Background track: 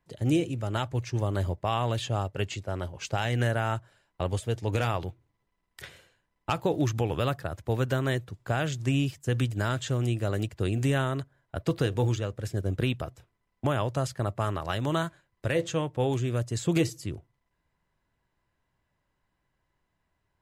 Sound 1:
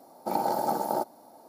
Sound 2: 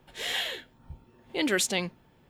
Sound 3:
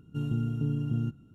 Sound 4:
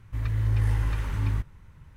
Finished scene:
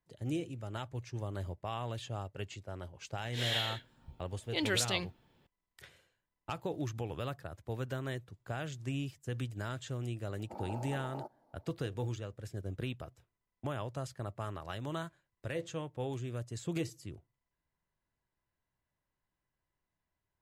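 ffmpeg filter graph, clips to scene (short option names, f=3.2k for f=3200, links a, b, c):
-filter_complex "[0:a]volume=-11dB[a];[2:a]equalizer=f=3.7k:t=o:w=1:g=6[b];[1:a]lowpass=f=1.3k:p=1[c];[b]atrim=end=2.29,asetpts=PTS-STARTPTS,volume=-7.5dB,afade=t=in:d=0.004:c=hsin,afade=t=out:st=2.286:d=0.004:c=hsin,adelay=3180[d];[c]atrim=end=1.48,asetpts=PTS-STARTPTS,volume=-15.5dB,afade=t=in:d=0.004:c=hsin,afade=t=out:st=1.476:d=0.004:c=hsin,adelay=10240[e];[a][d][e]amix=inputs=3:normalize=0"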